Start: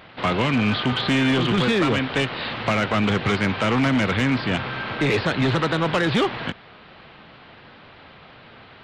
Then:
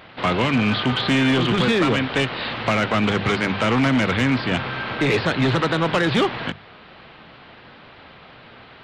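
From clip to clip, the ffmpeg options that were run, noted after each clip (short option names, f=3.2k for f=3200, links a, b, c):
-af "bandreject=f=50:t=h:w=6,bandreject=f=100:t=h:w=6,bandreject=f=150:t=h:w=6,bandreject=f=200:t=h:w=6,volume=1.5dB"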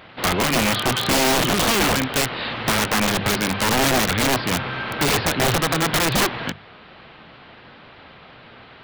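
-af "aeval=exprs='(mod(5.01*val(0)+1,2)-1)/5.01':c=same"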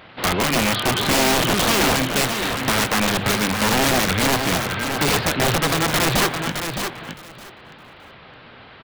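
-af "aecho=1:1:615|1230|1845:0.447|0.0715|0.0114"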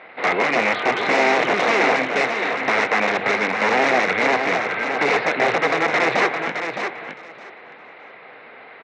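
-af "highpass=320,equalizer=f=460:t=q:w=4:g=6,equalizer=f=730:t=q:w=4:g=5,equalizer=f=2.1k:t=q:w=4:g=9,equalizer=f=3.2k:t=q:w=4:g=-10,equalizer=f=4.6k:t=q:w=4:g=-9,lowpass=f=4.7k:w=0.5412,lowpass=f=4.7k:w=1.3066"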